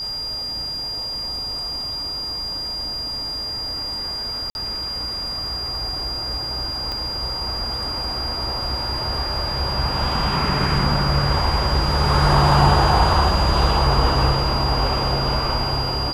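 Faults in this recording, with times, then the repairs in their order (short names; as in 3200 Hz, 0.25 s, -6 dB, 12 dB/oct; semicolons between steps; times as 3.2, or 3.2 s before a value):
tone 4800 Hz -25 dBFS
4.5–4.55 gap 51 ms
6.92 pop -15 dBFS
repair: de-click; notch 4800 Hz, Q 30; interpolate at 4.5, 51 ms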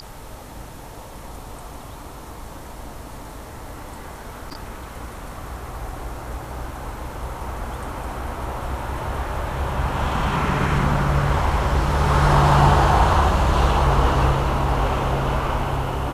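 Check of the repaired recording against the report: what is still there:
6.92 pop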